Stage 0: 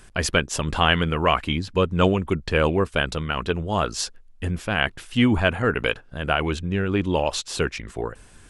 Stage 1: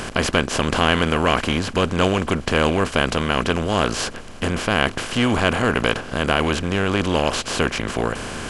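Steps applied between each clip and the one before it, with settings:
compressor on every frequency bin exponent 0.4
level −3.5 dB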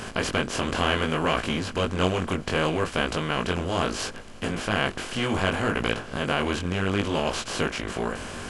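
chorus effect 0.68 Hz, delay 18 ms, depth 4.2 ms
level −3 dB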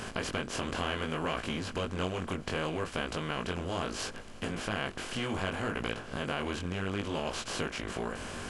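downward compressor 2 to 1, threshold −29 dBFS, peak gain reduction 7 dB
level −4 dB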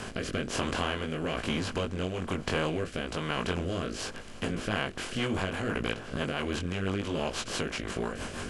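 rotating-speaker cabinet horn 1.1 Hz, later 6 Hz, at 0:04.33
level +4.5 dB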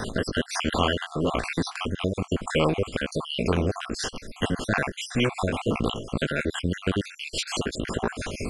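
time-frequency cells dropped at random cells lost 58%
level +8.5 dB

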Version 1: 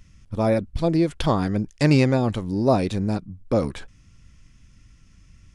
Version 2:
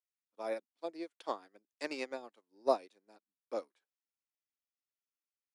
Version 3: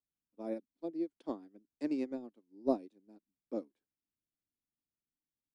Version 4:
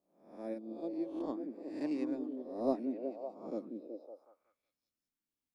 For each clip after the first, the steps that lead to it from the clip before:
Bessel high-pass filter 490 Hz, order 8; expander for the loud parts 2.5 to 1, over −41 dBFS; level −5.5 dB
drawn EQ curve 290 Hz 0 dB, 460 Hz −13 dB, 1,200 Hz −24 dB; level +11.5 dB
peak hold with a rise ahead of every peak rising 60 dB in 0.58 s; echo through a band-pass that steps 186 ms, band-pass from 250 Hz, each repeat 0.7 octaves, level −1.5 dB; level −2.5 dB

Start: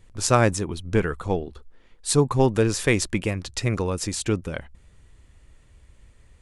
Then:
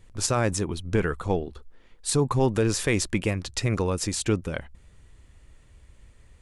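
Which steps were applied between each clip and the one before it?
brickwall limiter −12 dBFS, peak gain reduction 9 dB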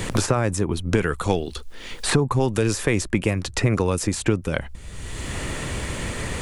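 dynamic equaliser 4,300 Hz, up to −4 dB, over −45 dBFS, Q 0.86
multiband upward and downward compressor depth 100%
level +3.5 dB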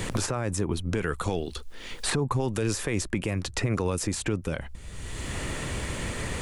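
brickwall limiter −13.5 dBFS, peak gain reduction 8.5 dB
level −3.5 dB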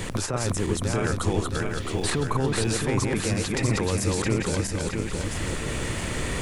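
feedback delay that plays each chunk backwards 334 ms, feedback 70%, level −1.5 dB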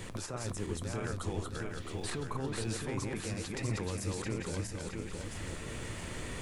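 flanger 1.9 Hz, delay 8 ms, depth 4.4 ms, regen +79%
level −7.5 dB

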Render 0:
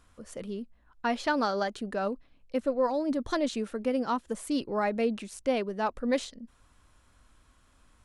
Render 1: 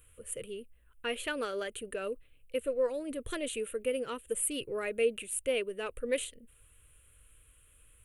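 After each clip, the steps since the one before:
drawn EQ curve 130 Hz 0 dB, 200 Hz −15 dB, 300 Hz −10 dB, 470 Hz +2 dB, 810 Hz −20 dB, 1,300 Hz −7 dB, 1,900 Hz −3 dB, 2,800 Hz +6 dB, 5,200 Hz −19 dB, 9,000 Hz +13 dB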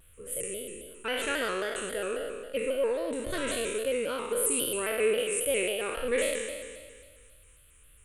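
peak hold with a decay on every bin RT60 1.71 s
delay with a high-pass on its return 257 ms, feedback 64%, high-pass 3,100 Hz, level −19 dB
pitch modulation by a square or saw wave square 3.7 Hz, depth 100 cents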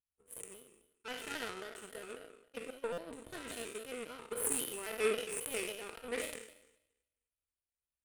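notch comb filter 560 Hz
power curve on the samples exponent 2
buffer that repeats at 0:02.92, samples 256, times 9
level +2.5 dB

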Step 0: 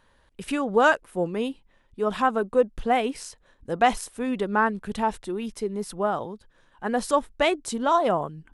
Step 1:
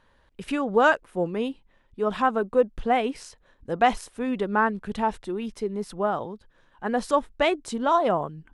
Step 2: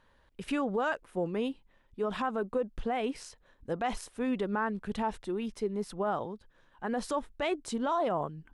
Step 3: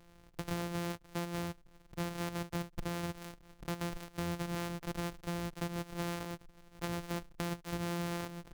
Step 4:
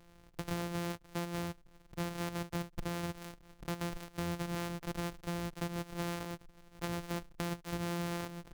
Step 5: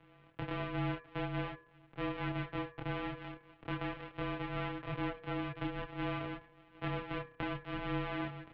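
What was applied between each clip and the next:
high-shelf EQ 8,000 Hz −12 dB
brickwall limiter −18.5 dBFS, peak gain reduction 11 dB; level −3.5 dB
samples sorted by size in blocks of 256 samples; downward compressor 4 to 1, threshold −42 dBFS, peak gain reduction 13 dB; level +5 dB
no processing that can be heard
multi-voice chorus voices 6, 0.4 Hz, delay 28 ms, depth 3.3 ms; hum removal 75.82 Hz, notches 34; single-sideband voice off tune −200 Hz 250–3,300 Hz; level +7 dB

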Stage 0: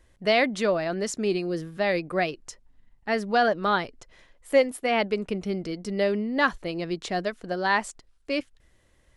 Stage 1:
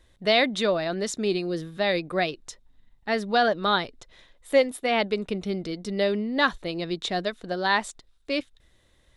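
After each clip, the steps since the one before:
parametric band 3,700 Hz +12.5 dB 0.22 octaves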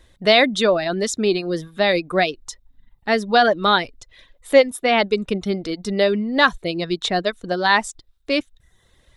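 reverb reduction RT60 0.62 s
level +7 dB

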